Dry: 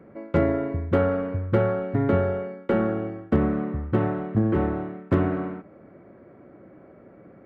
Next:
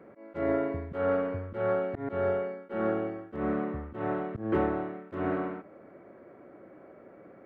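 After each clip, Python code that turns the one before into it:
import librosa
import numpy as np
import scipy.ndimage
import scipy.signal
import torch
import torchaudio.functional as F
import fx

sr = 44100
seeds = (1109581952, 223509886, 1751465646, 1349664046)

y = fx.bass_treble(x, sr, bass_db=-10, treble_db=-1)
y = fx.auto_swell(y, sr, attack_ms=186.0)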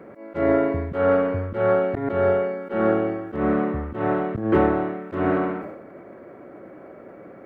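y = fx.sustainer(x, sr, db_per_s=52.0)
y = F.gain(torch.from_numpy(y), 8.5).numpy()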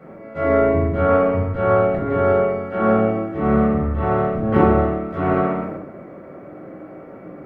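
y = fx.room_shoebox(x, sr, seeds[0], volume_m3=760.0, walls='furnished', distance_m=6.7)
y = F.gain(torch.from_numpy(y), -5.0).numpy()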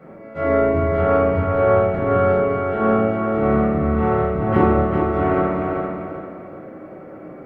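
y = fx.echo_feedback(x, sr, ms=392, feedback_pct=34, wet_db=-5)
y = F.gain(torch.from_numpy(y), -1.0).numpy()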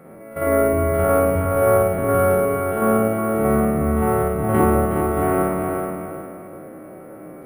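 y = fx.spec_steps(x, sr, hold_ms=50)
y = np.repeat(y[::4], 4)[:len(y)]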